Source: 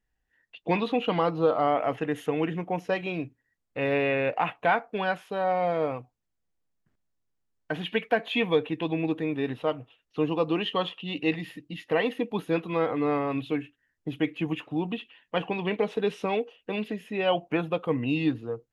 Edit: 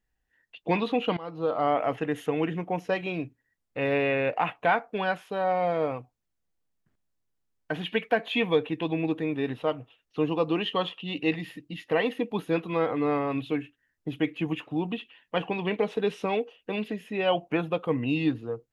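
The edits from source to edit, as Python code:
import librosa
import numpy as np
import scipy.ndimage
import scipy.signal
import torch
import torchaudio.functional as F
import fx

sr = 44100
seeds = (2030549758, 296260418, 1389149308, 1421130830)

y = fx.edit(x, sr, fx.fade_in_from(start_s=1.17, length_s=0.54, floor_db=-21.5), tone=tone)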